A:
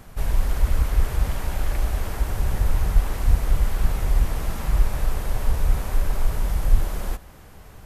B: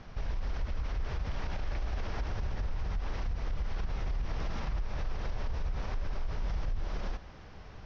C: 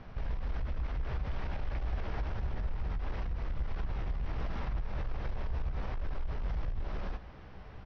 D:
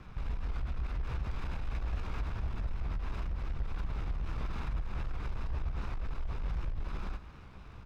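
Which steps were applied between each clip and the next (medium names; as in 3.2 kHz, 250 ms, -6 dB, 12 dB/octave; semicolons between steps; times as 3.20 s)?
elliptic low-pass 5.7 kHz, stop band 40 dB; compression 3:1, threshold -21 dBFS, peak gain reduction 9 dB; peak limiter -23.5 dBFS, peak gain reduction 10 dB; trim -2.5 dB
hard clipper -28.5 dBFS, distortion -21 dB; distance through air 190 m; doubling 16 ms -10.5 dB
comb filter that takes the minimum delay 0.79 ms; warped record 78 rpm, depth 100 cents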